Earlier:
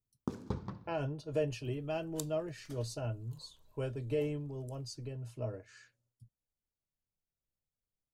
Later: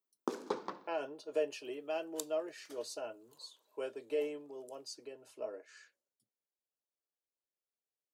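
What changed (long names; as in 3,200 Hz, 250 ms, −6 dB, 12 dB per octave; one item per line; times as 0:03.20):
first sound +7.5 dB
master: add high-pass filter 340 Hz 24 dB per octave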